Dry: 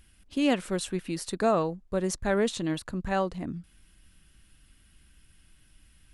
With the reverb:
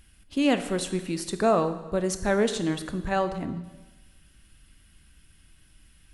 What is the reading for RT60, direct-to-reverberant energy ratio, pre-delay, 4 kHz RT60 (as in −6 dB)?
1.2 s, 9.5 dB, 5 ms, 1.1 s